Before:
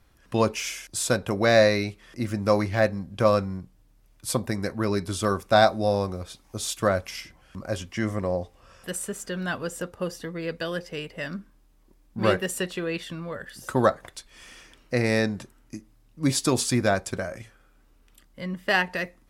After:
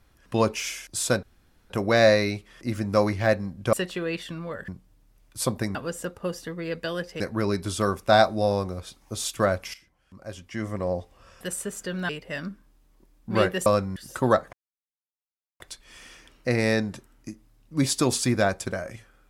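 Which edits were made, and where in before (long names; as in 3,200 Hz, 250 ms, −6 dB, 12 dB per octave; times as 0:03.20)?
0:01.23: splice in room tone 0.47 s
0:03.26–0:03.56: swap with 0:12.54–0:13.49
0:07.17–0:08.37: fade in quadratic, from −14 dB
0:09.52–0:10.97: move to 0:04.63
0:14.06: splice in silence 1.07 s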